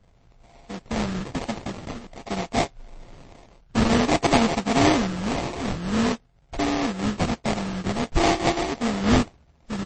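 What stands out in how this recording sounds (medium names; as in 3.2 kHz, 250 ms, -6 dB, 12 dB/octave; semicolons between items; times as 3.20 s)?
a buzz of ramps at a fixed pitch in blocks of 64 samples; phasing stages 12, 0.5 Hz, lowest notch 520–1600 Hz; aliases and images of a low sample rate 1.5 kHz, jitter 20%; MP3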